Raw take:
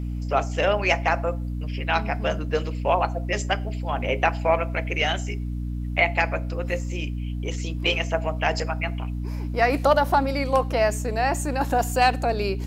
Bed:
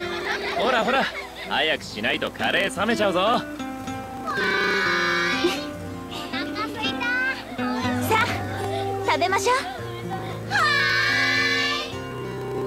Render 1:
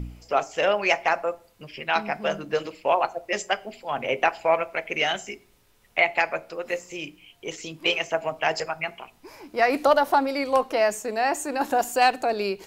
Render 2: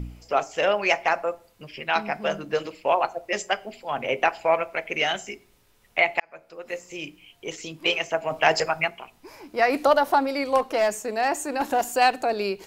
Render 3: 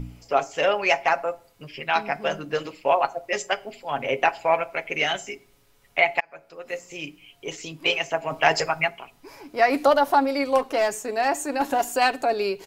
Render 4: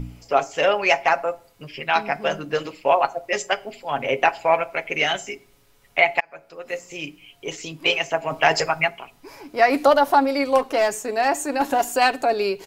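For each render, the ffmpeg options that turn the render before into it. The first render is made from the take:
ffmpeg -i in.wav -af "bandreject=frequency=60:width_type=h:width=4,bandreject=frequency=120:width_type=h:width=4,bandreject=frequency=180:width_type=h:width=4,bandreject=frequency=240:width_type=h:width=4,bandreject=frequency=300:width_type=h:width=4" out.wav
ffmpeg -i in.wav -filter_complex "[0:a]asettb=1/sr,asplit=3[link_01][link_02][link_03];[link_01]atrim=end=8.304[link_04];[link_02]atrim=start=8.3:end=8.88,asetpts=PTS-STARTPTS,afade=type=in:duration=0.004:curve=qsin,afade=type=out:start_time=0.576:duration=0.004:curve=qsin,acontrast=28[link_05];[link_03]atrim=start=8.876[link_06];[link_04][link_05]acrossfade=duration=0.004:curve1=hsin:curve2=qsin[link_07];[link_07][link_06]acrossfade=duration=0.004:curve1=qsin:curve2=hsin,asettb=1/sr,asplit=3[link_08][link_09][link_10];[link_08]atrim=end=10.584[link_11];[link_09]atrim=start=10.58:end=11.94,asetpts=PTS-STARTPTS,afade=type=in:duration=0.004:curve=qsin,afade=type=out:start_time=1.356:duration=0.004:curve=qsin,volume=16.5dB,asoftclip=hard,volume=-16.5dB[link_12];[link_10]atrim=start=11.936[link_13];[link_11][link_12]acrossfade=duration=0.004:curve1=hsin:curve2=qsin[link_14];[link_14][link_13]acrossfade=duration=0.004:curve1=qsin:curve2=hsin,asplit=2[link_15][link_16];[link_15]atrim=end=6.2,asetpts=PTS-STARTPTS,afade=type=out:start_time=6.196:duration=0.004:curve=hsin[link_17];[link_16]atrim=start=6.2,asetpts=PTS-STARTPTS,afade=type=in:duration=0.85[link_18];[link_17][link_18]concat=n=2:v=0:a=1" out.wav
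ffmpeg -i in.wav -af "aecho=1:1:7.2:0.39" out.wav
ffmpeg -i in.wav -af "volume=2.5dB,alimiter=limit=-3dB:level=0:latency=1" out.wav

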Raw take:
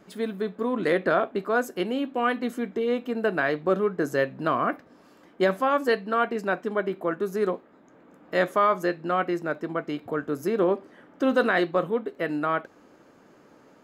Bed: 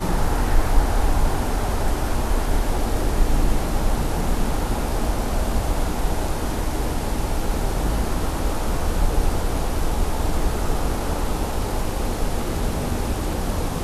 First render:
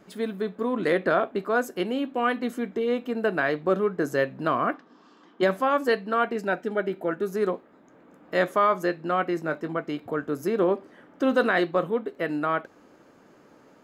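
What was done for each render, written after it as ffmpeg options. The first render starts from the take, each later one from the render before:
ffmpeg -i in.wav -filter_complex "[0:a]asplit=3[link_01][link_02][link_03];[link_01]afade=type=out:start_time=4.72:duration=0.02[link_04];[link_02]highpass=frequency=180:width=0.5412,highpass=frequency=180:width=1.3066,equalizer=frequency=570:width_type=q:width=4:gain=-9,equalizer=frequency=1100:width_type=q:width=4:gain=5,equalizer=frequency=2200:width_type=q:width=4:gain=-6,equalizer=frequency=3300:width_type=q:width=4:gain=5,lowpass=frequency=6500:width=0.5412,lowpass=frequency=6500:width=1.3066,afade=type=in:start_time=4.72:duration=0.02,afade=type=out:start_time=5.41:duration=0.02[link_05];[link_03]afade=type=in:start_time=5.41:duration=0.02[link_06];[link_04][link_05][link_06]amix=inputs=3:normalize=0,asettb=1/sr,asplit=3[link_07][link_08][link_09];[link_07]atrim=end=6.384[link_10];[link_08]atrim=start=6.38:end=7.28,asetpts=PTS-STARTPTS,afade=type=in:duration=0.004:curve=qsin,afade=type=out:start_time=0.896:duration=0.004:curve=qsin,asuperstop=centerf=1100:order=12:qfactor=5.7[link_11];[link_09]atrim=start=7.276[link_12];[link_10][link_11]acrossfade=duration=0.004:curve1=hsin:curve2=qsin[link_13];[link_13][link_12]acrossfade=duration=0.004:curve1=qsin:curve2=hsin,asettb=1/sr,asplit=3[link_14][link_15][link_16];[link_14]atrim=end=9.354[link_17];[link_15]atrim=start=9.35:end=9.77,asetpts=PTS-STARTPTS,afade=type=in:duration=0.004:curve=qsin,afade=type=out:start_time=0.416:duration=0.004:curve=qsin,asplit=2[link_18][link_19];[link_19]adelay=19,volume=-8.5dB[link_20];[link_18][link_20]amix=inputs=2:normalize=0,atrim=end_sample=18522[link_21];[link_16]atrim=start=9.766[link_22];[link_17][link_21]acrossfade=duration=0.004:curve1=hsin:curve2=qsin[link_23];[link_23][link_22]acrossfade=duration=0.004:curve1=qsin:curve2=hsin" out.wav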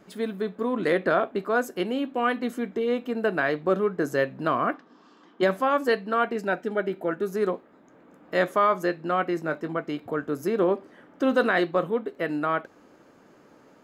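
ffmpeg -i in.wav -af anull out.wav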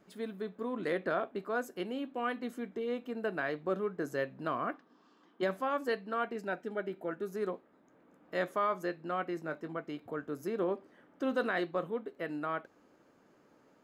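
ffmpeg -i in.wav -af "volume=-10dB" out.wav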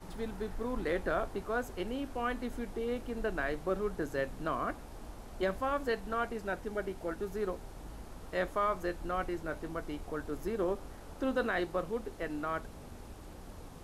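ffmpeg -i in.wav -i bed.wav -filter_complex "[1:a]volume=-24.5dB[link_01];[0:a][link_01]amix=inputs=2:normalize=0" out.wav

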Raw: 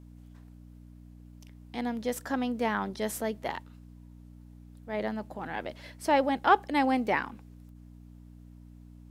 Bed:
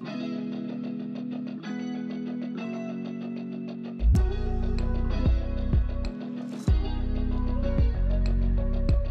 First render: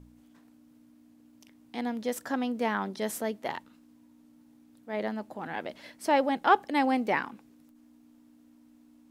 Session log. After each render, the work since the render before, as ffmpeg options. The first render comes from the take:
ffmpeg -i in.wav -af "bandreject=frequency=60:width_type=h:width=4,bandreject=frequency=120:width_type=h:width=4,bandreject=frequency=180:width_type=h:width=4" out.wav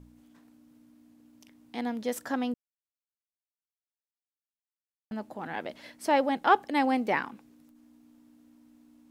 ffmpeg -i in.wav -filter_complex "[0:a]asplit=3[link_01][link_02][link_03];[link_01]atrim=end=2.54,asetpts=PTS-STARTPTS,afade=type=out:start_time=2.536:duration=0.004:curve=hsin[link_04];[link_02]atrim=start=2.54:end=5.11,asetpts=PTS-STARTPTS,volume=0[link_05];[link_03]atrim=start=5.11,asetpts=PTS-STARTPTS,afade=type=in:duration=0.004:curve=hsin[link_06];[link_04][link_05][link_06]concat=n=3:v=0:a=1" out.wav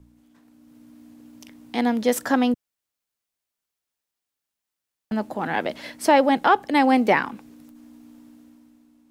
ffmpeg -i in.wav -filter_complex "[0:a]acrossover=split=130[link_01][link_02];[link_02]alimiter=limit=-17dB:level=0:latency=1:release=345[link_03];[link_01][link_03]amix=inputs=2:normalize=0,dynaudnorm=framelen=110:gausssize=13:maxgain=11dB" out.wav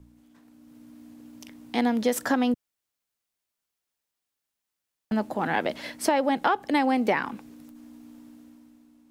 ffmpeg -i in.wav -af "acompressor=threshold=-19dB:ratio=6" out.wav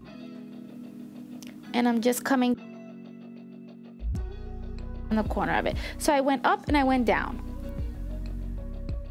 ffmpeg -i in.wav -i bed.wav -filter_complex "[1:a]volume=-10dB[link_01];[0:a][link_01]amix=inputs=2:normalize=0" out.wav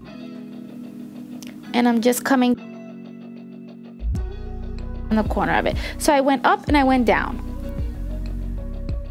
ffmpeg -i in.wav -af "volume=6.5dB" out.wav

